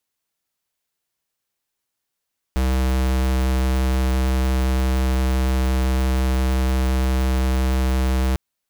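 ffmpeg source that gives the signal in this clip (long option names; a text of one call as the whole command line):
ffmpeg -f lavfi -i "aevalsrc='0.112*(2*lt(mod(64.7*t,1),0.5)-1)':duration=5.8:sample_rate=44100" out.wav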